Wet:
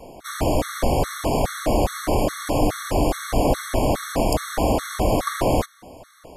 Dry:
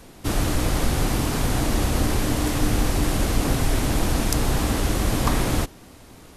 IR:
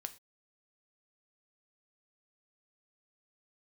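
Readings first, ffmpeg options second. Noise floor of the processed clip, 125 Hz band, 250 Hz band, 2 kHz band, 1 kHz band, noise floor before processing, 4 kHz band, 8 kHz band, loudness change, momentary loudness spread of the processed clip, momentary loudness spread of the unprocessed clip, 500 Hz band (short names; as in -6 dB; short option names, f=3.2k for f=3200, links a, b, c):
-53 dBFS, -3.0 dB, 0.0 dB, -1.5 dB, +5.0 dB, -46 dBFS, -2.5 dB, -3.0 dB, +0.5 dB, 2 LU, 1 LU, +7.0 dB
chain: -af "equalizer=f=630:w=1.1:g=13,afftfilt=real='re*gt(sin(2*PI*2.4*pts/sr)*(1-2*mod(floor(b*sr/1024/1100),2)),0)':imag='im*gt(sin(2*PI*2.4*pts/sr)*(1-2*mod(floor(b*sr/1024/1100),2)),0)':win_size=1024:overlap=0.75"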